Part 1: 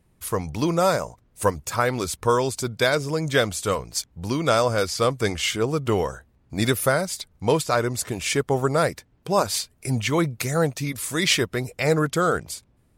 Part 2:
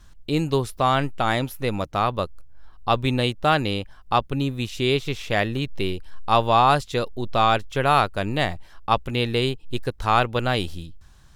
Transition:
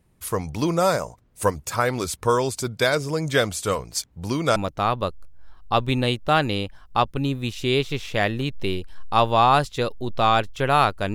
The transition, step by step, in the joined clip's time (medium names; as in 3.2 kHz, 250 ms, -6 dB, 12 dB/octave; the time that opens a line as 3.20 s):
part 1
4.56 s: go over to part 2 from 1.72 s